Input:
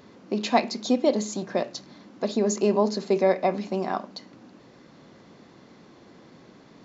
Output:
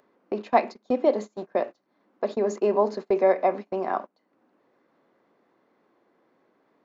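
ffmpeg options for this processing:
ffmpeg -i in.wav -filter_complex "[0:a]acrossover=split=290 2300:gain=0.126 1 0.158[link_01][link_02][link_03];[link_01][link_02][link_03]amix=inputs=3:normalize=0,acompressor=mode=upward:threshold=-28dB:ratio=2.5,agate=range=-27dB:threshold=-33dB:ratio=16:detection=peak,volume=2dB" out.wav

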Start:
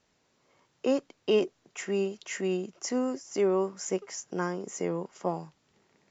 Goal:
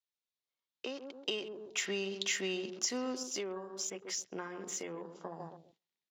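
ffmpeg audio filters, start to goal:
ffmpeg -i in.wav -filter_complex "[0:a]tiltshelf=frequency=1100:gain=-5,bandreject=frequency=60:width_type=h:width=6,bandreject=frequency=120:width_type=h:width=6,bandreject=frequency=180:width_type=h:width=6,asplit=2[link_01][link_02];[link_02]adelay=133,lowpass=frequency=1500:poles=1,volume=-11dB,asplit=2[link_03][link_04];[link_04]adelay=133,lowpass=frequency=1500:poles=1,volume=0.35,asplit=2[link_05][link_06];[link_06]adelay=133,lowpass=frequency=1500:poles=1,volume=0.35,asplit=2[link_07][link_08];[link_08]adelay=133,lowpass=frequency=1500:poles=1,volume=0.35[link_09];[link_01][link_03][link_05][link_07][link_09]amix=inputs=5:normalize=0,acompressor=threshold=-34dB:ratio=16,asettb=1/sr,asplit=3[link_10][link_11][link_12];[link_10]atrim=end=3.234[link_13];[link_11]atrim=start=3.23:end=5.4,asetpts=PTS-STARTPTS,afade=type=in:duration=0.004:curve=qsin,afade=type=out:start_time=2.166:duration=0.004:curve=qsin,flanger=delay=7.9:depth=4.3:regen=-51:speed=1.2:shape=triangular[link_14];[link_12]atrim=start=5.396[link_15];[link_13][link_14]acrossfade=duration=0.004:curve1=hsin:curve2=qsin[link_16];[link_16][link_15]acrossfade=duration=0.004:curve1=qsin:curve2=hsin,dynaudnorm=framelen=200:gausssize=13:maxgain=7dB,agate=range=-12dB:threshold=-57dB:ratio=16:detection=peak,equalizer=frequency=3700:width=1.6:gain=11,afwtdn=0.00447,volume=-6dB" out.wav

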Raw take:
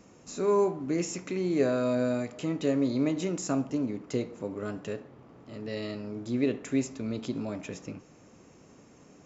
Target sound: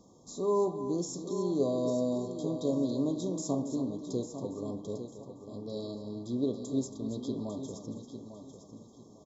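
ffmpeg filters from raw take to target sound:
ffmpeg -i in.wav -filter_complex "[0:a]asplit=2[link_01][link_02];[link_02]aecho=0:1:277:0.282[link_03];[link_01][link_03]amix=inputs=2:normalize=0,afftfilt=real='re*(1-between(b*sr/4096,1200,3200))':imag='im*(1-between(b*sr/4096,1200,3200))':win_size=4096:overlap=0.75,asplit=2[link_04][link_05];[link_05]aecho=0:1:849|1698|2547:0.316|0.0885|0.0248[link_06];[link_04][link_06]amix=inputs=2:normalize=0,volume=-3.5dB" out.wav

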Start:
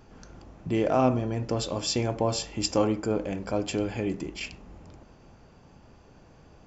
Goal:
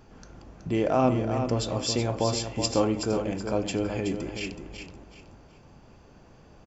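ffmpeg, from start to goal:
ffmpeg -i in.wav -af "aecho=1:1:374|748|1122|1496:0.422|0.122|0.0355|0.0103" out.wav

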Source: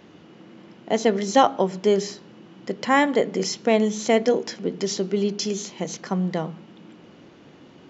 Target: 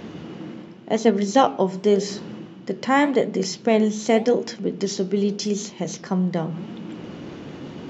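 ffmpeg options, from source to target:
ffmpeg -i in.wav -af "lowshelf=frequency=360:gain=6,areverse,acompressor=mode=upward:threshold=-23dB:ratio=2.5,areverse,flanger=delay=4.2:depth=9.4:regen=80:speed=0.89:shape=sinusoidal,volume=3dB" out.wav

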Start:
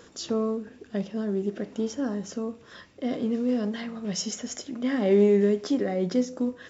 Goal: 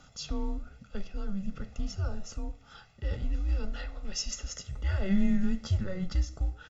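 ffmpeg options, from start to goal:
ffmpeg -i in.wav -af "afreqshift=-190,flanger=delay=7.2:depth=8:regen=-90:speed=1.2:shape=sinusoidal,aecho=1:1:1.5:0.8,volume=-1.5dB" out.wav

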